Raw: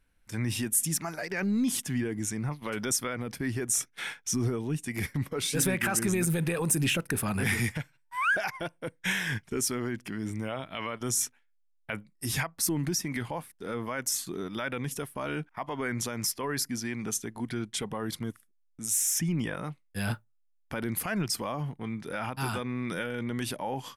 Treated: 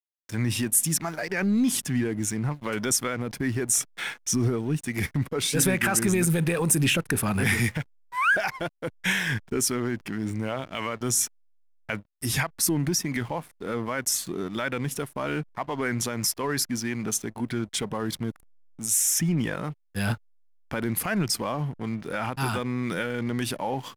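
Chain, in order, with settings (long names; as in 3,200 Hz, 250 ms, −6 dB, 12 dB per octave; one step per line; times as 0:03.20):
slack as between gear wheels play −44.5 dBFS
level +4.5 dB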